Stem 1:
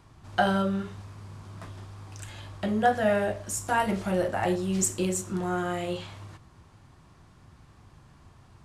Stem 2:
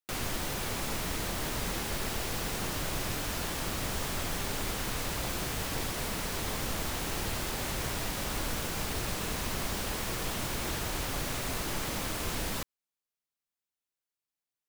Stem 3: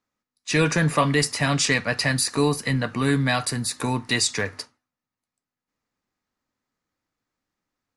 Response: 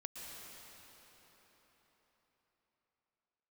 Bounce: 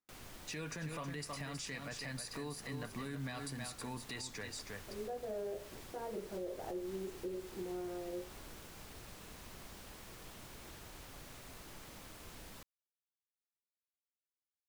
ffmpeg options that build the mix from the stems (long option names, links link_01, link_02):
-filter_complex "[0:a]bandpass=frequency=420:width_type=q:width=4.4:csg=0,adelay=2250,volume=-2dB[link_01];[1:a]volume=-18.5dB[link_02];[2:a]volume=-14dB,asplit=3[link_03][link_04][link_05];[link_04]volume=-8dB[link_06];[link_05]apad=whole_len=480300[link_07];[link_01][link_07]sidechaincompress=threshold=-57dB:ratio=8:attack=16:release=480[link_08];[link_06]aecho=0:1:319:1[link_09];[link_08][link_02][link_03][link_09]amix=inputs=4:normalize=0,alimiter=level_in=9.5dB:limit=-24dB:level=0:latency=1:release=172,volume=-9.5dB"